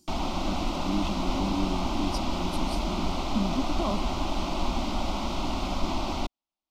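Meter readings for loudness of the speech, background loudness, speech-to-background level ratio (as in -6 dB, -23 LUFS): -34.0 LUFS, -31.0 LUFS, -3.0 dB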